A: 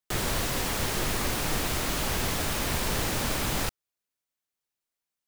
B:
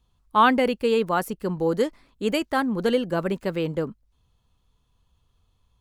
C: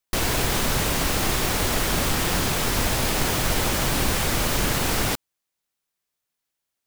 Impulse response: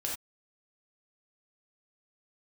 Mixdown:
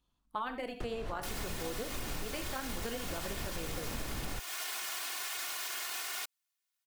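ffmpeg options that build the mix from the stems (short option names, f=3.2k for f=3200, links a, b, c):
-filter_complex "[0:a]acrossover=split=230[a][b];[a]acompressor=threshold=-43dB:ratio=3[c];[c][b]amix=inputs=2:normalize=0,aemphasis=mode=reproduction:type=riaa,adelay=700,volume=-5dB[d];[1:a]lowshelf=f=290:g=-7.5,tremolo=f=230:d=0.667,volume=-7dB,asplit=3[e][f][g];[f]volume=-7.5dB[h];[2:a]highpass=1.1k,aecho=1:1:2.8:0.72,alimiter=limit=-21.5dB:level=0:latency=1,adelay=1100,volume=-5dB[i];[g]apad=whole_len=267847[j];[d][j]sidechaincompress=threshold=-37dB:ratio=8:attack=7.6:release=242[k];[3:a]atrim=start_sample=2205[l];[h][l]afir=irnorm=-1:irlink=0[m];[k][e][i][m]amix=inputs=4:normalize=0,acompressor=threshold=-35dB:ratio=5"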